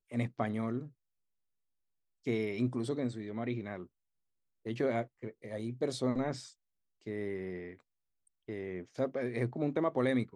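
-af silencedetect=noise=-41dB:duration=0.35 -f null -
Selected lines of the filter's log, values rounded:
silence_start: 0.87
silence_end: 2.27 | silence_duration: 1.40
silence_start: 3.84
silence_end: 4.66 | silence_duration: 0.82
silence_start: 6.48
silence_end: 7.07 | silence_duration: 0.59
silence_start: 7.73
silence_end: 8.48 | silence_duration: 0.76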